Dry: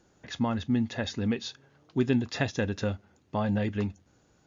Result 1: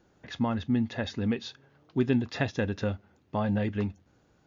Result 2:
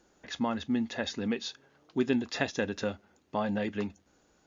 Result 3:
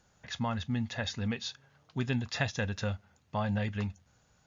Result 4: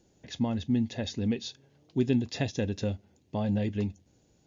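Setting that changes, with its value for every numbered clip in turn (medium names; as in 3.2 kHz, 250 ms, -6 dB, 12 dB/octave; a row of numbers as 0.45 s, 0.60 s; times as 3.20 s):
peaking EQ, frequency: 9.2 kHz, 110 Hz, 330 Hz, 1.3 kHz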